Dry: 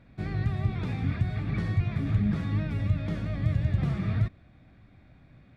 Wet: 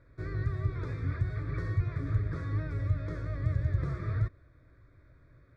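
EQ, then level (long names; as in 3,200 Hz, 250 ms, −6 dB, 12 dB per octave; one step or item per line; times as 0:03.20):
high-frequency loss of the air 54 metres
phaser with its sweep stopped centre 780 Hz, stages 6
0.0 dB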